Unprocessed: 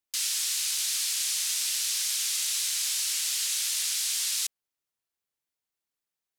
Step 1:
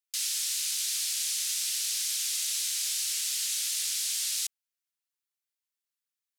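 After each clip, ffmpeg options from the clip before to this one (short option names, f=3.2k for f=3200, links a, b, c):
-af "highpass=f=1k:w=0.5412,highpass=f=1k:w=1.3066,tiltshelf=f=1.4k:g=-4,volume=-5.5dB"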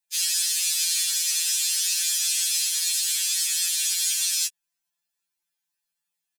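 -af "aecho=1:1:1.2:0.4,afftfilt=real='re*2.83*eq(mod(b,8),0)':imag='im*2.83*eq(mod(b,8),0)':win_size=2048:overlap=0.75,volume=8dB"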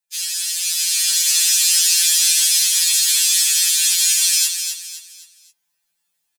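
-filter_complex "[0:a]asplit=2[a][b];[b]aecho=0:1:259|518|777|1036:0.447|0.156|0.0547|0.0192[c];[a][c]amix=inputs=2:normalize=0,dynaudnorm=f=280:g=7:m=9.5dB"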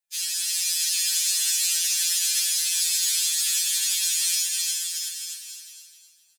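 -af "alimiter=limit=-12dB:level=0:latency=1:release=395,aecho=1:1:360|630|832.5|984.4|1098:0.631|0.398|0.251|0.158|0.1,volume=-4dB"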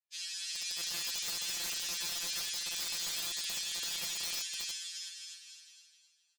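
-af "highpass=650,lowpass=5.1k,aeval=exprs='0.15*(cos(1*acos(clip(val(0)/0.15,-1,1)))-cos(1*PI/2))+0.0015*(cos(4*acos(clip(val(0)/0.15,-1,1)))-cos(4*PI/2))':c=same,aeval=exprs='(mod(11.2*val(0)+1,2)-1)/11.2':c=same,volume=-8dB"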